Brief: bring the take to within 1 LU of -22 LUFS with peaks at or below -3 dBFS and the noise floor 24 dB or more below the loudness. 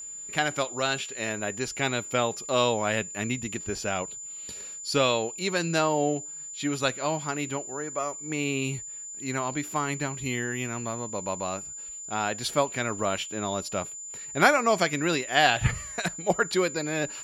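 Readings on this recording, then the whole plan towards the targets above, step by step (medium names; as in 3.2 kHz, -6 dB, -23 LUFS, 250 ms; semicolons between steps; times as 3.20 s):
steady tone 7.1 kHz; tone level -37 dBFS; loudness -28.0 LUFS; peak level -5.0 dBFS; loudness target -22.0 LUFS
-> band-stop 7.1 kHz, Q 30; trim +6 dB; peak limiter -3 dBFS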